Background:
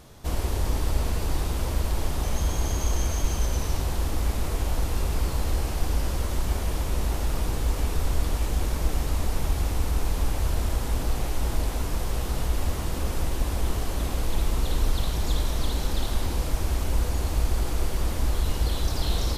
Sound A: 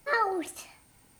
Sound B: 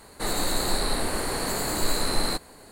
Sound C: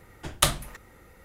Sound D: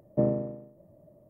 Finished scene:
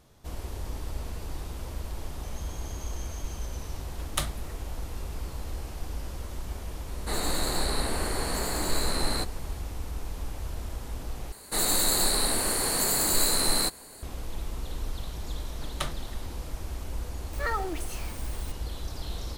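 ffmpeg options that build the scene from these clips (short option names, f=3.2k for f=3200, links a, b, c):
-filter_complex "[3:a]asplit=2[a][b];[2:a]asplit=2[c][d];[0:a]volume=-10dB[e];[c]aresample=32000,aresample=44100[f];[d]highshelf=f=4.9k:g=11.5[g];[b]lowpass=f=3.4k:p=1[h];[1:a]aeval=exprs='val(0)+0.5*0.0188*sgn(val(0))':c=same[i];[e]asplit=2[j][k];[j]atrim=end=11.324[l];[g]atrim=end=2.71,asetpts=PTS-STARTPTS,volume=-2.5dB[m];[k]atrim=start=14.026[n];[a]atrim=end=1.24,asetpts=PTS-STARTPTS,volume=-8.5dB,afade=t=in:d=0.004:c=hsin,afade=t=out:st=1.236:d=0.004:c=hsin,adelay=3750[o];[f]atrim=end=2.71,asetpts=PTS-STARTPTS,volume=-3dB,afade=t=in:d=0.004:c=hsin,afade=t=out:st=2.706:d=0.004:c=hsin,adelay=6870[p];[h]atrim=end=1.24,asetpts=PTS-STARTPTS,volume=-8.5dB,afade=t=in:d=0.004:c=hsin,afade=t=out:st=1.236:d=0.004:c=hsin,adelay=15380[q];[i]atrim=end=1.19,asetpts=PTS-STARTPTS,volume=-5.5dB,afade=t=in:d=0.004:c=hsin,afade=t=out:st=1.186:d=0.004:c=hsin,adelay=17330[r];[l][m]acrossfade=d=0.004:c1=hsin:c2=hsin[s];[s][n]acrossfade=d=0.004:c1=hsin:c2=hsin[t];[t][o][p][q][r]amix=inputs=5:normalize=0"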